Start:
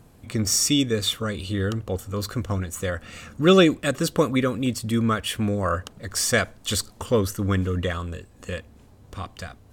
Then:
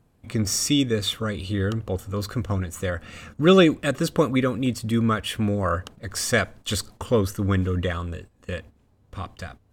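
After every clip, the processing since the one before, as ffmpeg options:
-af "agate=range=-11dB:threshold=-42dB:ratio=16:detection=peak,bass=f=250:g=1,treble=f=4k:g=-4"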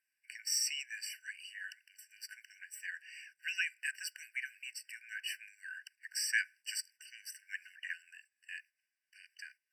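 -af "afftfilt=real='re*eq(mod(floor(b*sr/1024/1500),2),1)':imag='im*eq(mod(floor(b*sr/1024/1500),2),1)':win_size=1024:overlap=0.75,volume=-6.5dB"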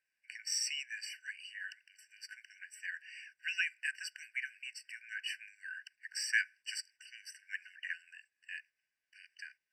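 -af "adynamicsmooth=sensitivity=1:basefreq=7.3k,volume=1.5dB"

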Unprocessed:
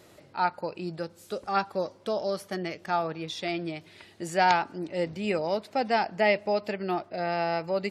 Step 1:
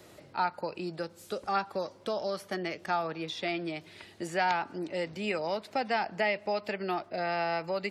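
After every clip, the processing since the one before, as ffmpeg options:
-filter_complex "[0:a]acrossover=split=210|900|3800[a][b][c][d];[a]acompressor=threshold=-50dB:ratio=4[e];[b]acompressor=threshold=-34dB:ratio=4[f];[c]acompressor=threshold=-30dB:ratio=4[g];[d]acompressor=threshold=-49dB:ratio=4[h];[e][f][g][h]amix=inputs=4:normalize=0,volume=1dB"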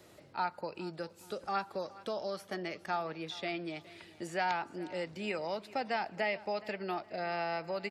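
-af "aecho=1:1:417|834|1251:0.106|0.0328|0.0102,volume=-4.5dB"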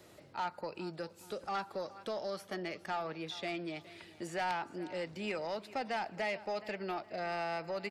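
-af "asoftclip=type=tanh:threshold=-29dB"

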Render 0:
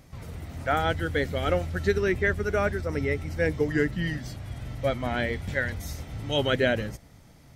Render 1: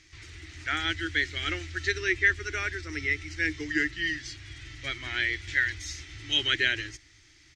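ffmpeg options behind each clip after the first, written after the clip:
-af "firequalizer=gain_entry='entry(100,0);entry(210,-24);entry(320,9);entry(500,-16);entry(1800,14);entry(6600,14);entry(12000,-15)':delay=0.05:min_phase=1,volume=-8dB"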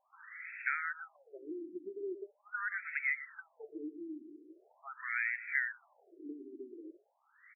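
-filter_complex "[0:a]acompressor=threshold=-35dB:ratio=6,asplit=2[a][b];[b]adelay=120,lowpass=f=2k:p=1,volume=-12dB,asplit=2[c][d];[d]adelay=120,lowpass=f=2k:p=1,volume=0.34,asplit=2[e][f];[f]adelay=120,lowpass=f=2k:p=1,volume=0.34[g];[a][c][e][g]amix=inputs=4:normalize=0,afftfilt=real='re*between(b*sr/1024,280*pow(1900/280,0.5+0.5*sin(2*PI*0.42*pts/sr))/1.41,280*pow(1900/280,0.5+0.5*sin(2*PI*0.42*pts/sr))*1.41)':imag='im*between(b*sr/1024,280*pow(1900/280,0.5+0.5*sin(2*PI*0.42*pts/sr))/1.41,280*pow(1900/280,0.5+0.5*sin(2*PI*0.42*pts/sr))*1.41)':win_size=1024:overlap=0.75,volume=4.5dB"

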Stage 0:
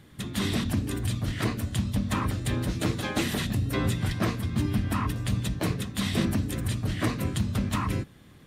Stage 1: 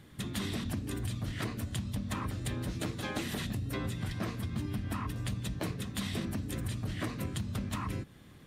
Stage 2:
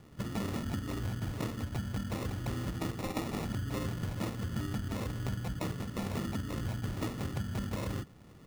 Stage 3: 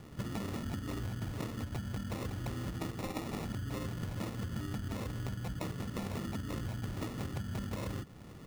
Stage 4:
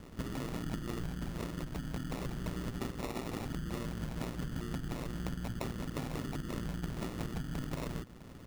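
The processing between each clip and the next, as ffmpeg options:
-af "acompressor=threshold=-30dB:ratio=6,volume=-2dB"
-af "acrusher=samples=28:mix=1:aa=0.000001"
-af "acompressor=threshold=-40dB:ratio=5,volume=4.5dB"
-af "aeval=exprs='val(0)*sin(2*PI*59*n/s)':c=same,volume=3dB"

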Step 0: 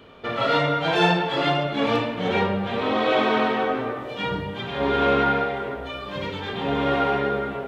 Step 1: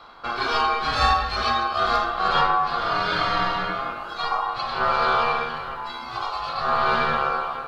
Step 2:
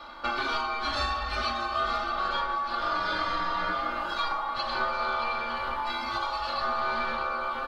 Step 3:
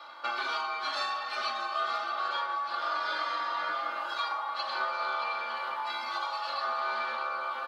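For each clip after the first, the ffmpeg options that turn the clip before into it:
-af "aphaser=in_gain=1:out_gain=1:delay=1:decay=0.26:speed=0.43:type=sinusoidal,aeval=exprs='val(0)*sin(2*PI*940*n/s)':c=same,equalizer=f=125:t=o:w=1:g=-3,equalizer=f=250:t=o:w=1:g=-8,equalizer=f=500:t=o:w=1:g=-8,equalizer=f=1k:t=o:w=1:g=10,equalizer=f=2k:t=o:w=1:g=-11,equalizer=f=4k:t=o:w=1:g=3,volume=3dB"
-af "acompressor=threshold=-28dB:ratio=10,aecho=1:1:3.4:0.84,aecho=1:1:624:0.251"
-af "highpass=550,volume=-2.5dB"

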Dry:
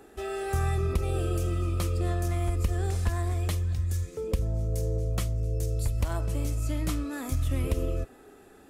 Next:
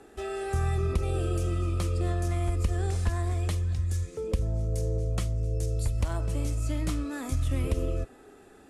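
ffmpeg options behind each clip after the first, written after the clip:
-filter_complex "[0:a]lowpass=f=11k:w=0.5412,lowpass=f=11k:w=1.3066,acrossover=split=440[a][b];[b]acompressor=threshold=-34dB:ratio=6[c];[a][c]amix=inputs=2:normalize=0"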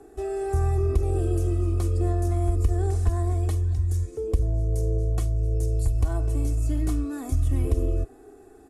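-af "equalizer=f=2.9k:w=0.5:g=-11.5,aecho=1:1:2.7:0.71,volume=2dB"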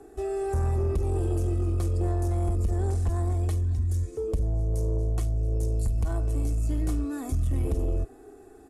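-af "asoftclip=type=tanh:threshold=-19.5dB"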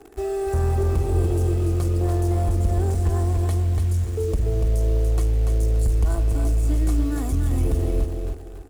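-filter_complex "[0:a]asplit=2[a][b];[b]acrusher=bits=6:mix=0:aa=0.000001,volume=-4.5dB[c];[a][c]amix=inputs=2:normalize=0,aecho=1:1:289|578|867|1156:0.562|0.163|0.0473|0.0137"

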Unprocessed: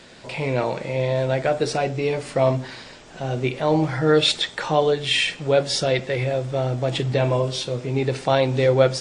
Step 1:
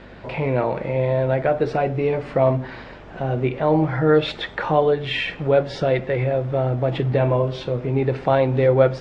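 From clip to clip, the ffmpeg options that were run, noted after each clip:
-filter_complex "[0:a]lowpass=1.9k,asplit=2[a][b];[b]acompressor=threshold=-29dB:ratio=6,volume=-2dB[c];[a][c]amix=inputs=2:normalize=0,aeval=exprs='val(0)+0.00501*(sin(2*PI*50*n/s)+sin(2*PI*2*50*n/s)/2+sin(2*PI*3*50*n/s)/3+sin(2*PI*4*50*n/s)/4+sin(2*PI*5*50*n/s)/5)':c=same"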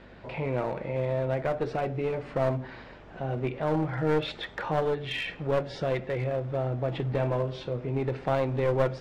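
-af "aeval=exprs='clip(val(0),-1,0.112)':c=same,volume=-8dB"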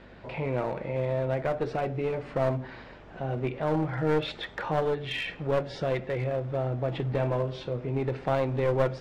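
-af anull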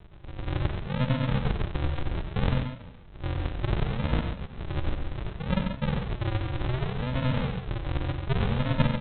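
-af "equalizer=f=2.4k:t=o:w=0.3:g=3.5,aresample=8000,acrusher=samples=29:mix=1:aa=0.000001:lfo=1:lforange=17.4:lforate=0.66,aresample=44100,aecho=1:1:93.29|137:0.398|0.447"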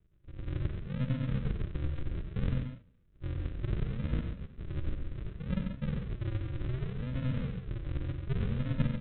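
-af "agate=range=-13dB:threshold=-39dB:ratio=16:detection=peak,lowpass=f=1.4k:p=1,equalizer=f=820:w=1.5:g=-15,volume=-5dB"

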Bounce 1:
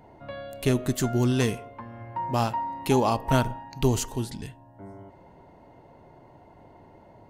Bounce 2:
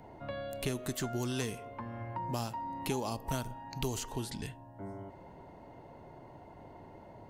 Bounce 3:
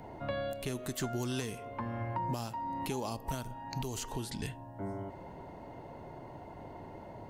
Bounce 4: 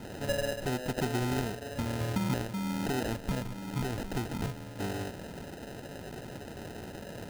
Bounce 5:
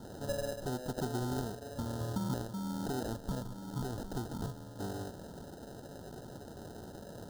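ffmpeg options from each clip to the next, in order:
-filter_complex "[0:a]acrossover=split=450|4600[a][b][c];[a]acompressor=threshold=-37dB:ratio=4[d];[b]acompressor=threshold=-40dB:ratio=4[e];[c]acompressor=threshold=-43dB:ratio=4[f];[d][e][f]amix=inputs=3:normalize=0"
-af "alimiter=level_in=5dB:limit=-24dB:level=0:latency=1:release=433,volume=-5dB,volume=4.5dB"
-af "acrusher=samples=39:mix=1:aa=0.000001,volume=4.5dB"
-af "asuperstop=centerf=2300:order=4:qfactor=1.2,volume=-4.5dB"

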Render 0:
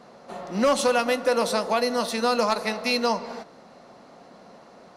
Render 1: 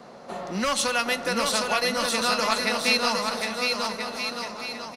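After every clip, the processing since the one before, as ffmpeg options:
-filter_complex "[0:a]acrossover=split=140|1200|6500[a][b][c][d];[b]acompressor=threshold=-35dB:ratio=4[e];[a][e][c][d]amix=inputs=4:normalize=0,aecho=1:1:760|1330|1758|2078|2319:0.631|0.398|0.251|0.158|0.1,volume=3.5dB"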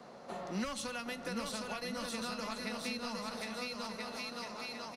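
-filter_complex "[0:a]acrossover=split=280[a][b];[b]acompressor=threshold=-32dB:ratio=6[c];[a][c]amix=inputs=2:normalize=0,volume=-7dB"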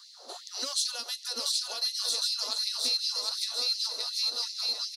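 -af "highshelf=f=3.1k:t=q:w=3:g=11,afftfilt=real='re*gte(b*sr/1024,250*pow(2000/250,0.5+0.5*sin(2*PI*2.7*pts/sr)))':imag='im*gte(b*sr/1024,250*pow(2000/250,0.5+0.5*sin(2*PI*2.7*pts/sr)))':win_size=1024:overlap=0.75"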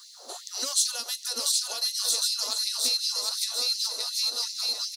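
-af "aexciter=amount=2.3:drive=5.9:freq=6.4k,volume=2dB"

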